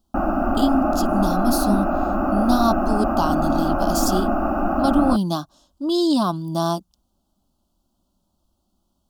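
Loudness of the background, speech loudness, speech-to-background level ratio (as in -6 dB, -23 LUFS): -22.0 LUFS, -23.5 LUFS, -1.5 dB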